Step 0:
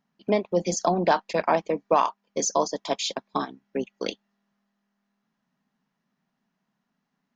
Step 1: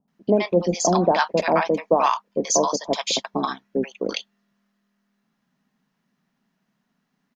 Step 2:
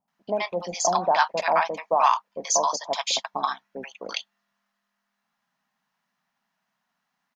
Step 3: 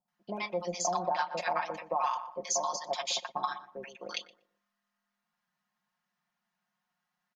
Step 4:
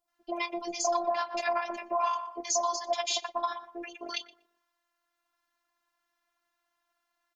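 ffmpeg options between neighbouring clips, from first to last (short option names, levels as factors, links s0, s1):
-filter_complex "[0:a]acrossover=split=840[s0][s1];[s1]adelay=80[s2];[s0][s2]amix=inputs=2:normalize=0,volume=1.88"
-af "lowshelf=f=550:t=q:w=1.5:g=-12,volume=0.841"
-filter_complex "[0:a]aecho=1:1:5.6:0.83,asplit=2[s0][s1];[s1]adelay=120,lowpass=f=810:p=1,volume=0.282,asplit=2[s2][s3];[s3]adelay=120,lowpass=f=810:p=1,volume=0.36,asplit=2[s4][s5];[s5]adelay=120,lowpass=f=810:p=1,volume=0.36,asplit=2[s6][s7];[s7]adelay=120,lowpass=f=810:p=1,volume=0.36[s8];[s0][s2][s4][s6][s8]amix=inputs=5:normalize=0,acompressor=threshold=0.126:ratio=6,volume=0.376"
-filter_complex "[0:a]asplit=2[s0][s1];[s1]alimiter=level_in=1.26:limit=0.0631:level=0:latency=1:release=228,volume=0.794,volume=1[s2];[s0][s2]amix=inputs=2:normalize=0,afftfilt=real='hypot(re,im)*cos(PI*b)':imag='0':win_size=512:overlap=0.75,volume=1.19"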